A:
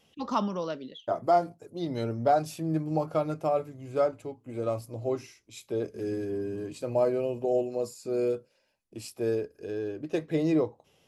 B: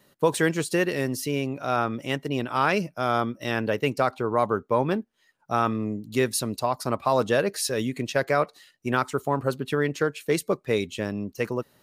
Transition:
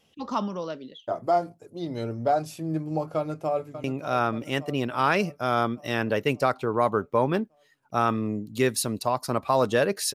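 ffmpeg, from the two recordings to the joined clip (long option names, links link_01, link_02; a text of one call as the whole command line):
ffmpeg -i cue0.wav -i cue1.wav -filter_complex "[0:a]apad=whole_dur=10.14,atrim=end=10.14,atrim=end=3.842[link_01];[1:a]atrim=start=1.408:end=7.71[link_02];[link_01][link_02]acrossfade=duration=0.004:curve1=hsin:curve2=hsin,asplit=2[link_03][link_04];[link_04]afade=type=in:start_time=3.16:duration=0.01,afade=type=out:start_time=3.84:duration=0.01,aecho=0:1:580|1160|1740|2320|2900|3480|4060:0.266073|0.159644|0.0957861|0.0574717|0.034483|0.0206898|0.0124139[link_05];[link_03][link_05]amix=inputs=2:normalize=0" out.wav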